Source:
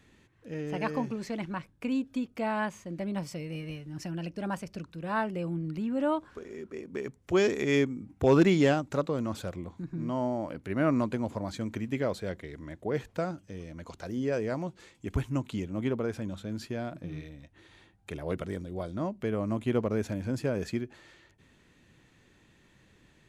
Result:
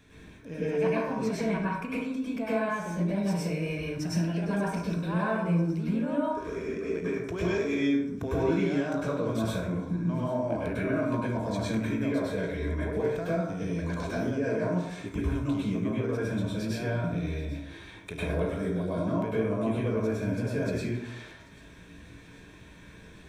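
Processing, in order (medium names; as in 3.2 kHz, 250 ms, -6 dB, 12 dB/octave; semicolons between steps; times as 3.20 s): rippled EQ curve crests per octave 1.6, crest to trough 7 dB; compression 6:1, threshold -37 dBFS, peak gain reduction 19.5 dB; feedback comb 56 Hz, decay 0.46 s, harmonics all, mix 60%; feedback echo behind a high-pass 790 ms, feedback 70%, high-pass 4.3 kHz, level -18 dB; plate-style reverb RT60 0.76 s, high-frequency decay 0.45×, pre-delay 90 ms, DRR -8 dB; trim +7 dB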